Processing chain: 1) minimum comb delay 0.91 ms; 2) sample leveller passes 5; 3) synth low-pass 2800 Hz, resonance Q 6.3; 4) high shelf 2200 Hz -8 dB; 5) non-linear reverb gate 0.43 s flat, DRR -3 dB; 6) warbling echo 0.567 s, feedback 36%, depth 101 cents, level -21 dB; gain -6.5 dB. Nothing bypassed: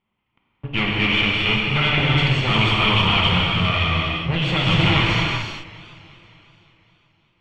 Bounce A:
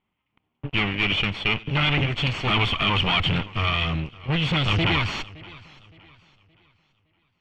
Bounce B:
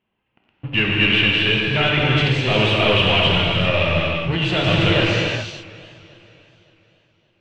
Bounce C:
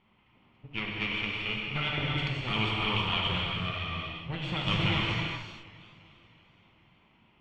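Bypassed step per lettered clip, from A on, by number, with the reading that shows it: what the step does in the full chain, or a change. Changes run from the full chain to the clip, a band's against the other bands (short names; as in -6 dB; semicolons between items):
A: 5, momentary loudness spread change +1 LU; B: 1, 500 Hz band +6.5 dB; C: 2, crest factor change +2.5 dB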